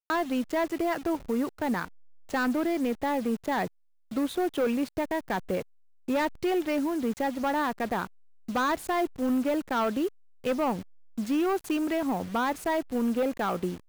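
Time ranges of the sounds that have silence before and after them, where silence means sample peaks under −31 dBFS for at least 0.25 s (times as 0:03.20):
0:02.34–0:03.67
0:04.12–0:05.62
0:06.08–0:08.05
0:08.49–0:10.08
0:10.45–0:10.80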